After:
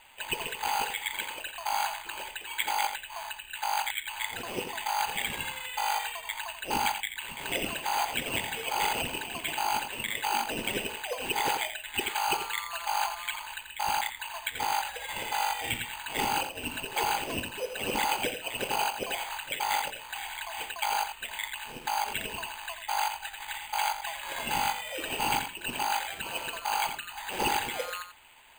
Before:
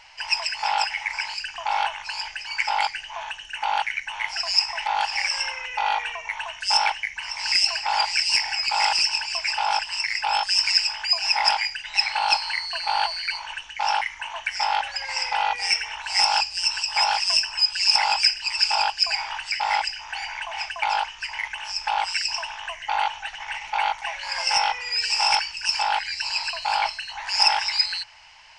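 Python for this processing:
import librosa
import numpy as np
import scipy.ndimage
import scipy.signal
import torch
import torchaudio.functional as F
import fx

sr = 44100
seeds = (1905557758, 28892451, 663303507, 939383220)

p1 = scipy.signal.sosfilt(scipy.signal.butter(4, 4100.0, 'lowpass', fs=sr, output='sos'), x)
p2 = p1 + fx.echo_single(p1, sr, ms=86, db=-9.0, dry=0)
p3 = np.repeat(p2[::8], 8)[:len(p2)]
y = F.gain(torch.from_numpy(p3), -6.0).numpy()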